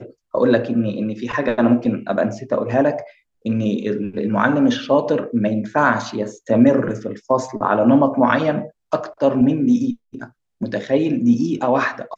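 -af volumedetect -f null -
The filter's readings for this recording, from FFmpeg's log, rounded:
mean_volume: -18.7 dB
max_volume: -1.3 dB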